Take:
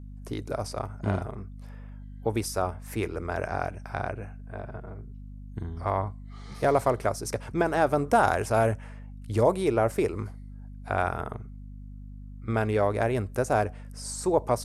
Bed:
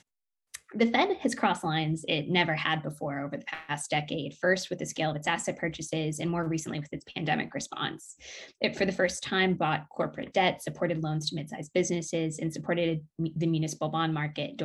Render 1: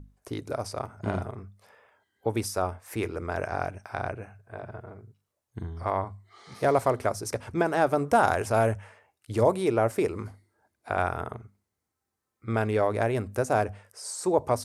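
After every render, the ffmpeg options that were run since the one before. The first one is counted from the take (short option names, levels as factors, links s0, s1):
-af "bandreject=f=50:t=h:w=6,bandreject=f=100:t=h:w=6,bandreject=f=150:t=h:w=6,bandreject=f=200:t=h:w=6,bandreject=f=250:t=h:w=6"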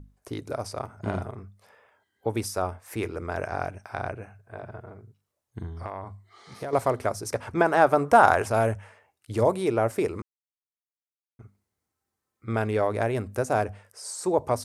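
-filter_complex "[0:a]asettb=1/sr,asplit=3[s0][s1][s2];[s0]atrim=end=5.744[s3];[s1]atrim=start=5.74:end=6.73,asetpts=PTS-STARTPTS,afade=t=in:d=0.004:c=qsin,afade=t=out:st=0.986:d=0.004:c=qsin,acompressor=threshold=0.0316:ratio=6:attack=3.2:release=140:knee=1:detection=peak[s4];[s2]atrim=start=6.726[s5];[s3][s4]acrossfade=d=0.004:c1=hsin:c2=qsin[s6];[s6][s5]acrossfade=d=0.004:c1=qsin:c2=hsin,asettb=1/sr,asplit=3[s7][s8][s9];[s7]atrim=end=7.344[s10];[s8]atrim=start=7.34:end=8.48,asetpts=PTS-STARTPTS,afade=t=in:d=0.004:c=qsin,afade=t=out:st=1.136:d=0.004:c=qsin,equalizer=f=1100:w=0.59:g=6.5[s11];[s9]atrim=start=8.476[s12];[s10][s11]acrossfade=d=0.004:c1=hsin:c2=qsin[s13];[s13][s12]acrossfade=d=0.004:c1=qsin:c2=hsin,asplit=3[s14][s15][s16];[s14]atrim=end=10.22,asetpts=PTS-STARTPTS,afade=t=out:st=10.216:d=0.004:c=hsin[s17];[s15]atrim=start=10.22:end=11.39,asetpts=PTS-STARTPTS,volume=0[s18];[s16]atrim=start=11.39,asetpts=PTS-STARTPTS,afade=t=in:d=0.004:c=hsin[s19];[s17][s18][s19]concat=n=3:v=0:a=1"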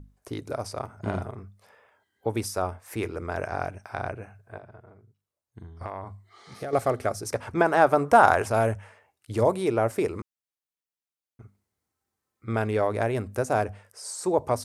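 -filter_complex "[0:a]asettb=1/sr,asplit=3[s0][s1][s2];[s0]atrim=end=6.564[s3];[s1]atrim=start=6.56:end=7.23,asetpts=PTS-STARTPTS,afade=t=in:d=0.004:c=qsin,afade=t=out:st=0.666:d=0.004:c=qsin,asuperstop=centerf=970:order=4:qfactor=5.8[s4];[s2]atrim=start=7.226[s5];[s3][s4]acrossfade=d=0.004:c1=hsin:c2=qsin[s6];[s6][s5]acrossfade=d=0.004:c1=qsin:c2=hsin,asplit=3[s7][s8][s9];[s7]atrim=end=4.582[s10];[s8]atrim=start=4.578:end=5.812,asetpts=PTS-STARTPTS,volume=0.398[s11];[s9]atrim=start=5.808[s12];[s10][s11]acrossfade=d=0.004:c1=hsin:c2=hsin[s13];[s13][s12]acrossfade=d=0.004:c1=hsin:c2=hsin"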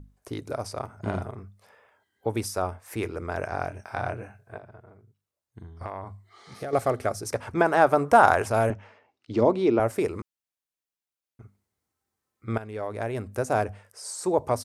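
-filter_complex "[0:a]asplit=3[s0][s1][s2];[s0]afade=t=out:st=3.7:d=0.02[s3];[s1]asplit=2[s4][s5];[s5]adelay=24,volume=0.668[s6];[s4][s6]amix=inputs=2:normalize=0,afade=t=in:st=3.7:d=0.02,afade=t=out:st=4.56:d=0.02[s7];[s2]afade=t=in:st=4.56:d=0.02[s8];[s3][s7][s8]amix=inputs=3:normalize=0,asettb=1/sr,asplit=3[s9][s10][s11];[s9]atrim=end=8.704[s12];[s10]atrim=start=8.7:end=9.8,asetpts=PTS-STARTPTS,afade=t=in:d=0.004:c=qsin,afade=t=out:st=1.096:d=0.004:c=qsin,highpass=120,equalizer=f=250:t=q:w=4:g=9,equalizer=f=350:t=q:w=4:g=5,equalizer=f=1700:t=q:w=4:g=-4,lowpass=f=5500:w=0.5412,lowpass=f=5500:w=1.3066[s13];[s11]atrim=start=9.796[s14];[s12][s13]acrossfade=d=0.004:c1=hsin:c2=qsin[s15];[s15][s14]acrossfade=d=0.004:c1=qsin:c2=hsin,asplit=2[s16][s17];[s16]atrim=end=12.58,asetpts=PTS-STARTPTS,afade=t=out:st=12.576:d=0.004:c=hsin:silence=0.177828[s18];[s17]atrim=start=12.58,asetpts=PTS-STARTPTS,afade=t=in:d=0.94:silence=0.177828[s19];[s18][s19]concat=n=2:v=0:a=1"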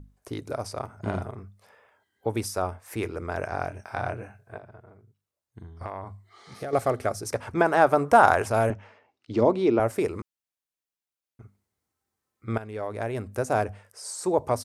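-af anull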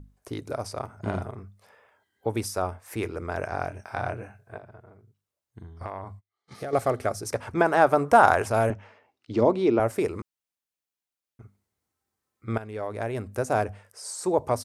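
-filter_complex "[0:a]asettb=1/sr,asplit=3[s0][s1][s2];[s0]atrim=end=5.994[s3];[s1]atrim=start=5.99:end=6.58,asetpts=PTS-STARTPTS,afade=t=in:d=0.004:c=qsin,afade=t=out:st=0.586:d=0.004:c=qsin,agate=range=0.02:threshold=0.00398:ratio=16:release=100:detection=peak[s4];[s2]atrim=start=6.576[s5];[s3][s4]acrossfade=d=0.004:c1=hsin:c2=qsin[s6];[s6][s5]acrossfade=d=0.004:c1=qsin:c2=hsin"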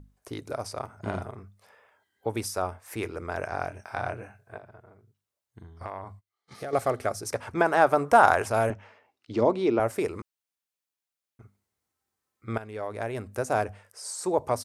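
-af "lowshelf=f=460:g=-4"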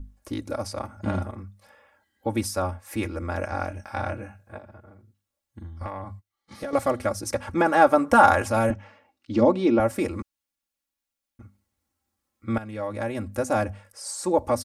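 -af "bass=f=250:g=9,treble=f=4000:g=0,aecho=1:1:3.6:0.87"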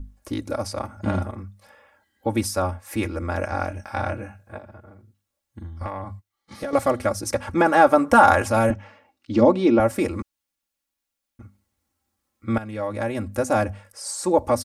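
-af "volume=1.41,alimiter=limit=0.794:level=0:latency=1"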